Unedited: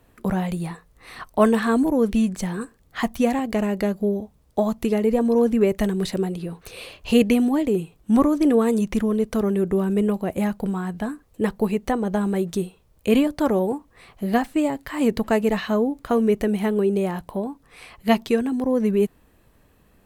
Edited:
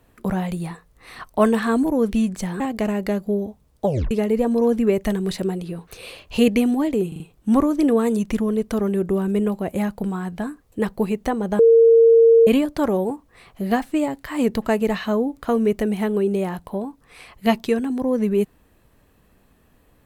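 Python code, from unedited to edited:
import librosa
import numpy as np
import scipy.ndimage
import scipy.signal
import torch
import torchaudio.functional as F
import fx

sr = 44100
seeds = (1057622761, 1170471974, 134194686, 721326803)

y = fx.edit(x, sr, fx.cut(start_s=2.6, length_s=0.74),
    fx.tape_stop(start_s=4.59, length_s=0.26),
    fx.stutter(start_s=7.82, slice_s=0.04, count=4),
    fx.bleep(start_s=12.21, length_s=0.88, hz=458.0, db=-8.5), tone=tone)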